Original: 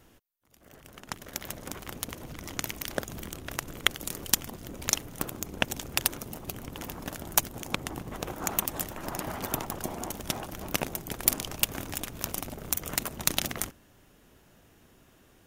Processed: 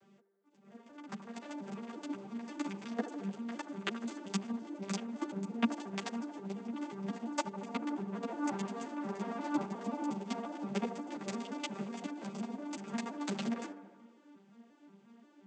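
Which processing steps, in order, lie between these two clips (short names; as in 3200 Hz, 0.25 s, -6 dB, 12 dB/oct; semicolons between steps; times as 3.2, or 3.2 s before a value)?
arpeggiated vocoder minor triad, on G3, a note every 0.177 s; band-limited delay 76 ms, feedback 70%, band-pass 710 Hz, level -10 dB; ensemble effect; gain +1 dB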